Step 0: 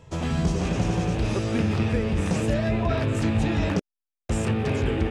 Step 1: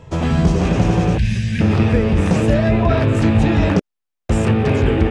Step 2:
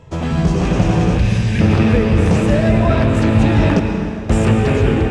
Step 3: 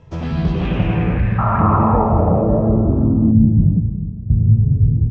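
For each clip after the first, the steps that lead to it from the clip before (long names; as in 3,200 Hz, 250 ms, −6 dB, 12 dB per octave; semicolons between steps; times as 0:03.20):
gain on a spectral selection 0:01.18–0:01.61, 220–1,500 Hz −23 dB; high-shelf EQ 3,900 Hz −8 dB; level +9 dB
automatic gain control; convolution reverb RT60 2.9 s, pre-delay 97 ms, DRR 5 dB; level −2 dB
sound drawn into the spectrogram noise, 0:01.38–0:03.32, 550–1,400 Hz −18 dBFS; low-pass filter sweep 6,000 Hz → 130 Hz, 0:00.10–0:03.91; bass and treble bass +4 dB, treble −10 dB; level −6 dB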